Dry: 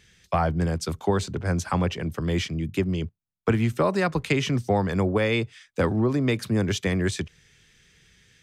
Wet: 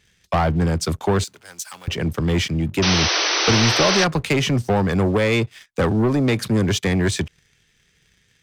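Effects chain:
leveller curve on the samples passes 2
0:01.24–0:01.88: first difference
0:02.82–0:04.05: sound drawn into the spectrogram noise 300–6,200 Hz −20 dBFS

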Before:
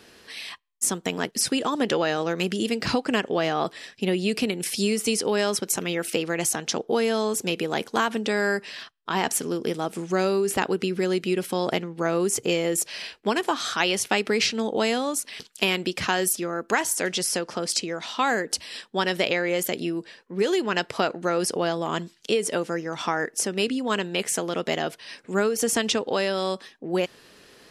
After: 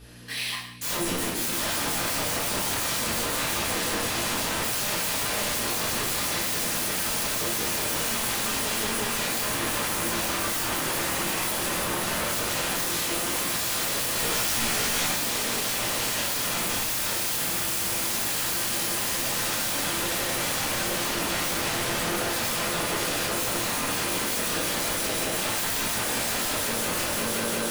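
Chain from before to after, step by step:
high-pass filter 170 Hz 12 dB per octave
parametric band 11,000 Hz +9.5 dB 0.48 octaves
mains-hum notches 60/120/180/240/300/360 Hz
transient designer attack +5 dB, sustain +9 dB
on a send: echo that builds up and dies away 176 ms, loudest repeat 5, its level −13 dB
on the sum: wave folding −27.5 dBFS
in parallel at −3.5 dB: bit reduction 6 bits
0:14.14–0:15.11: on the sum: double-tracking delay 17 ms −2.5 dB
mains hum 60 Hz, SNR 17 dB
reverb whose tail is shaped and stops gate 240 ms falling, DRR −6.5 dB
level −7 dB

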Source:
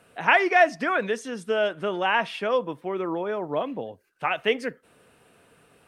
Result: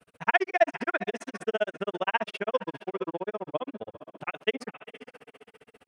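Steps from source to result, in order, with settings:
feedback delay with all-pass diffusion 450 ms, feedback 40%, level −14.5 dB
granular cloud 45 ms, grains 15 per second, spray 18 ms, pitch spread up and down by 0 semitones

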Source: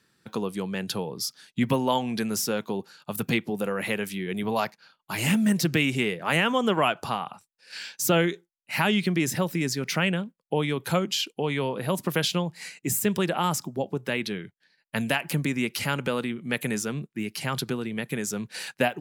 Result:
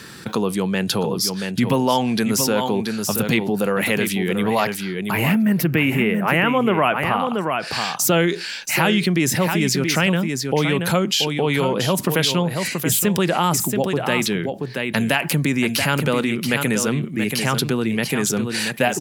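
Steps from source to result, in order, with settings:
0:05.11–0:07.20: flat-topped bell 5,700 Hz −15.5 dB
single-tap delay 680 ms −9.5 dB
envelope flattener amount 50%
level +3.5 dB

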